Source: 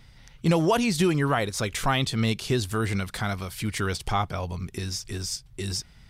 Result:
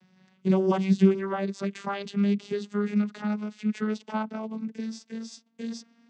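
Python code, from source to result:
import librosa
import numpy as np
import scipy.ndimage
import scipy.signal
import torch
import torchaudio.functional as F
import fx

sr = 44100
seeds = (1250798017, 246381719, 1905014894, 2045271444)

y = fx.vocoder_glide(x, sr, note=54, semitones=4)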